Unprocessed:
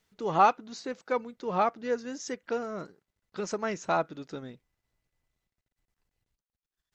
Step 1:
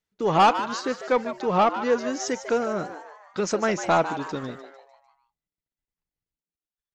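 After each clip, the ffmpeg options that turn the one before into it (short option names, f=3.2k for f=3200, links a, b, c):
-filter_complex "[0:a]agate=range=-21dB:threshold=-51dB:ratio=16:detection=peak,asoftclip=type=tanh:threshold=-20dB,asplit=2[a][b];[b]asplit=5[c][d][e][f][g];[c]adelay=150,afreqshift=140,volume=-11.5dB[h];[d]adelay=300,afreqshift=280,volume=-17.7dB[i];[e]adelay=450,afreqshift=420,volume=-23.9dB[j];[f]adelay=600,afreqshift=560,volume=-30.1dB[k];[g]adelay=750,afreqshift=700,volume=-36.3dB[l];[h][i][j][k][l]amix=inputs=5:normalize=0[m];[a][m]amix=inputs=2:normalize=0,volume=8.5dB"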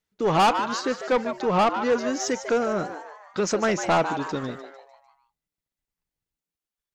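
-af "asoftclip=type=tanh:threshold=-17dB,volume=2.5dB"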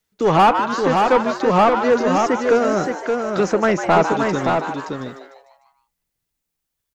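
-filter_complex "[0:a]highshelf=f=6.6k:g=5.5,acrossover=split=330|650|2500[a][b][c][d];[d]acompressor=threshold=-44dB:ratio=5[e];[a][b][c][e]amix=inputs=4:normalize=0,aecho=1:1:572:0.596,volume=6dB"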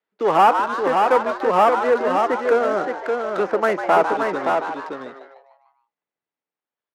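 -filter_complex "[0:a]acrossover=split=2500[a][b];[b]acompressor=threshold=-45dB:ratio=6[c];[a][c]amix=inputs=2:normalize=0,highpass=390,lowpass=5.3k,adynamicsmooth=sensitivity=6:basefreq=2.1k"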